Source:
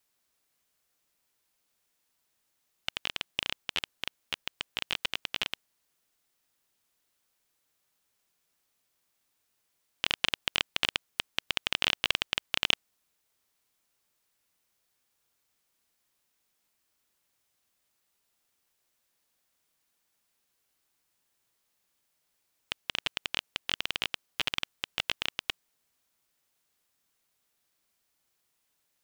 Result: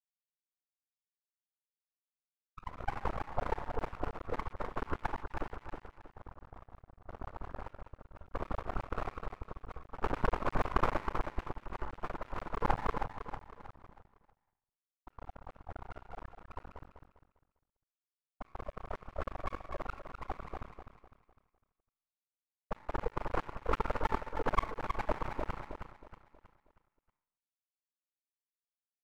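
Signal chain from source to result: sine-wave speech; FDN reverb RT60 1.9 s, high-frequency decay 0.3×, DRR 1 dB; added harmonics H 6 -20 dB, 7 -24 dB, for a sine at -12.5 dBFS; crossover distortion -58 dBFS; on a send: feedback echo 0.318 s, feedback 39%, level -7 dB; 11.41–12.61 on the sum: compressor 3:1, threshold -37 dBFS, peak gain reduction 12 dB; echoes that change speed 0.382 s, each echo +4 st, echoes 3, each echo -6 dB; steep low-pass 1300 Hz 48 dB/oct; half-wave rectifier; noise-modulated level, depth 55%; gain +16.5 dB

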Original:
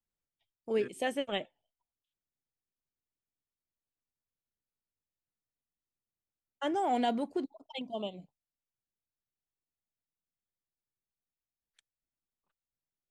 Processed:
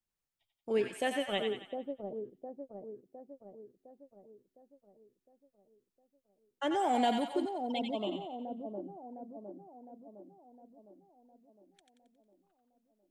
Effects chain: 6.79–7.83 high shelf 10000 Hz +10 dB; on a send: split-band echo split 730 Hz, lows 0.709 s, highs 90 ms, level -5 dB

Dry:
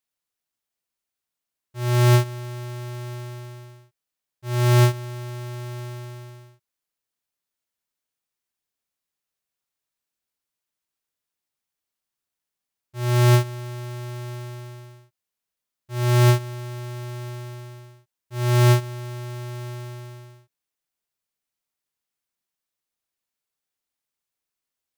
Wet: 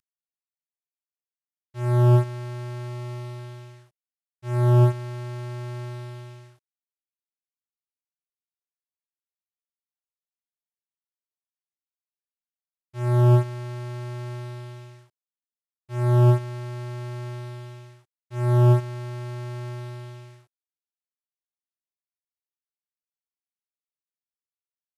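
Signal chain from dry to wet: CVSD 64 kbps; 2.87–3.39 notch 1600 Hz, Q 15

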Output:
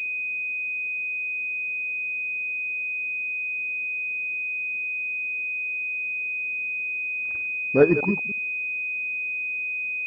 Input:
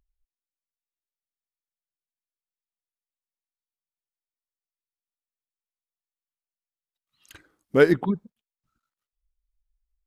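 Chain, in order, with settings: reverse delay 0.104 s, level -11 dB; band noise 170–580 Hz -63 dBFS; pulse-width modulation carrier 2500 Hz

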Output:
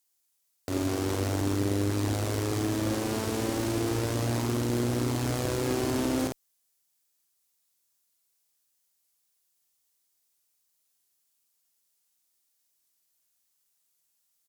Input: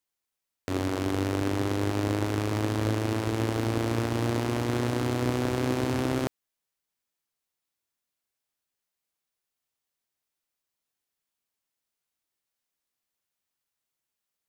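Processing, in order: tone controls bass -1 dB, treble +12 dB; doubler 50 ms -5 dB; one-sided clip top -23.5 dBFS

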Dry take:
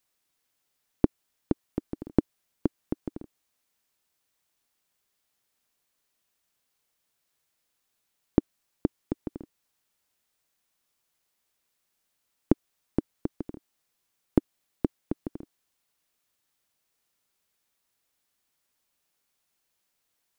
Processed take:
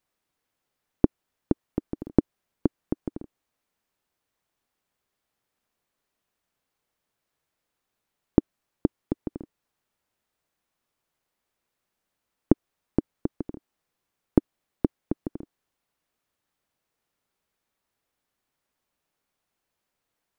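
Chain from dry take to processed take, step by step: high shelf 2500 Hz -11 dB; gain +3 dB

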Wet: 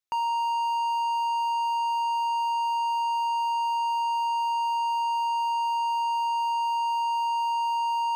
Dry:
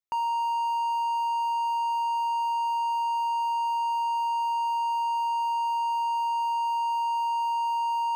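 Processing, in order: bell 4100 Hz +5 dB 1.9 oct

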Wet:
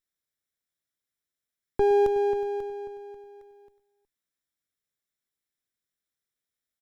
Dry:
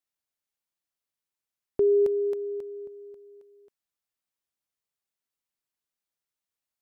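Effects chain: minimum comb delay 0.55 ms; tapped delay 0.113/0.367 s -18.5/-17.5 dB; gain +1.5 dB

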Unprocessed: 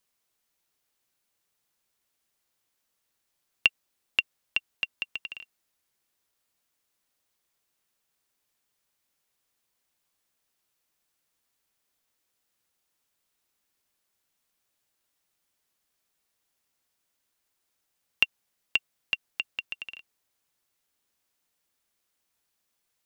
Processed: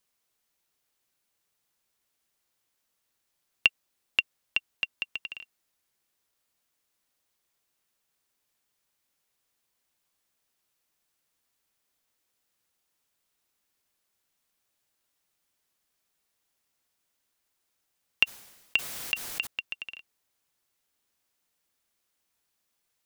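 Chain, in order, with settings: 18.24–19.47 sustainer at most 41 dB/s

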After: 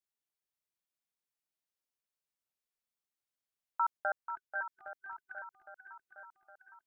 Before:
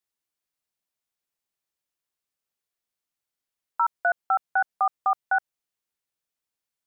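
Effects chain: 3.97–4.69 ring modulator 90 Hz; 4.26–5.83 spectral gain 390–1500 Hz -29 dB; swung echo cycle 0.812 s, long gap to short 1.5:1, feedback 48%, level -9.5 dB; gain -8 dB

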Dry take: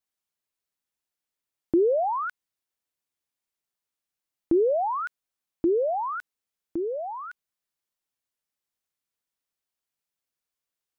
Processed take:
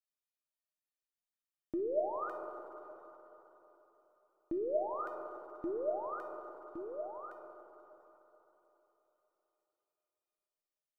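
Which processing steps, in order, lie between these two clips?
resonator 610 Hz, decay 0.37 s, mix 90%; on a send: reverb RT60 3.8 s, pre-delay 47 ms, DRR 5 dB; on the sum: gain +3.5 dB

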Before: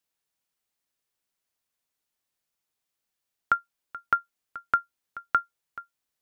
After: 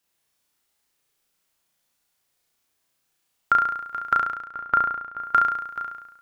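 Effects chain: 4.13–5.19 LPF 1300 Hz 6 dB/oct; limiter -15 dBFS, peak gain reduction 4.5 dB; on a send: flutter echo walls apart 5.9 m, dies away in 0.92 s; on the sum: gain +6.5 dB

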